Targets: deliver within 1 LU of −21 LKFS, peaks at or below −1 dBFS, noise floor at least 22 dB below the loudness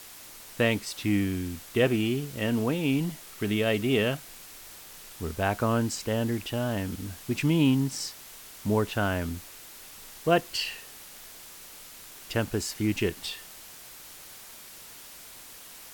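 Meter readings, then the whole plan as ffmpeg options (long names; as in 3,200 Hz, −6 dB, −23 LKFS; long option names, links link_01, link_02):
background noise floor −47 dBFS; target noise floor −51 dBFS; integrated loudness −28.5 LKFS; sample peak −9.5 dBFS; target loudness −21.0 LKFS
→ -af "afftdn=noise_reduction=6:noise_floor=-47"
-af "volume=7.5dB"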